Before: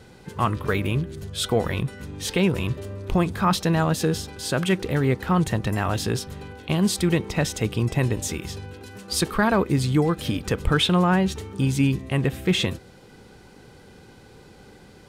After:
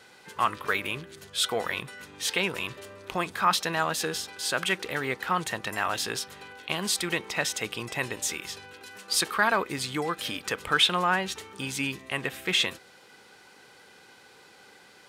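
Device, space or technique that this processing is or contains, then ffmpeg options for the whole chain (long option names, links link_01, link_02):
filter by subtraction: -filter_complex "[0:a]asplit=2[link_01][link_02];[link_02]lowpass=1600,volume=-1[link_03];[link_01][link_03]amix=inputs=2:normalize=0"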